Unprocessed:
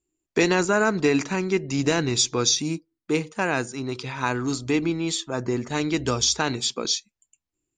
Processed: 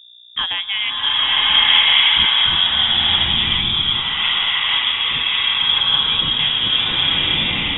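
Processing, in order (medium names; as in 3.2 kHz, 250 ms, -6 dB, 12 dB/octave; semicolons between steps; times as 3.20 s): mains buzz 60 Hz, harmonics 4, -44 dBFS -5 dB/octave; frequency inversion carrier 3.6 kHz; swelling reverb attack 1240 ms, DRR -10 dB; trim -2 dB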